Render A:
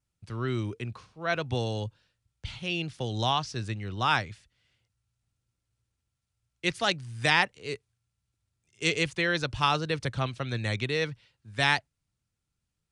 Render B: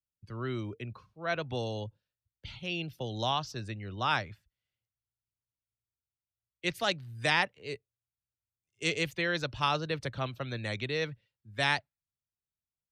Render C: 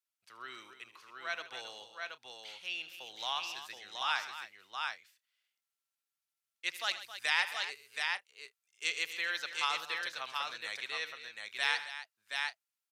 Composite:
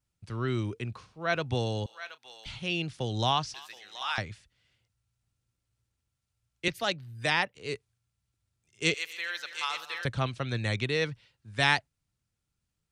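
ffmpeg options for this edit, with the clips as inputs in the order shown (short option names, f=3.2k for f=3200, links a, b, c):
-filter_complex "[2:a]asplit=3[a][b][c];[0:a]asplit=5[d][e][f][g][h];[d]atrim=end=1.862[i];[a]atrim=start=1.858:end=2.462[j];[e]atrim=start=2.458:end=3.542[k];[b]atrim=start=3.538:end=4.182[l];[f]atrim=start=4.178:end=6.682[m];[1:a]atrim=start=6.678:end=7.552[n];[g]atrim=start=7.548:end=8.942[o];[c]atrim=start=8.938:end=10.052[p];[h]atrim=start=10.048[q];[i][j]acrossfade=d=0.004:c1=hsin:c2=hsin[r];[r][k]acrossfade=d=0.004:c1=hsin:c2=hsin[s];[s][l]acrossfade=d=0.004:c1=hsin:c2=hsin[t];[t][m]acrossfade=d=0.004:c1=hsin:c2=hsin[u];[u][n]acrossfade=d=0.004:c1=hsin:c2=hsin[v];[v][o]acrossfade=d=0.004:c1=hsin:c2=hsin[w];[w][p]acrossfade=d=0.004:c1=hsin:c2=hsin[x];[x][q]acrossfade=d=0.004:c1=hsin:c2=hsin"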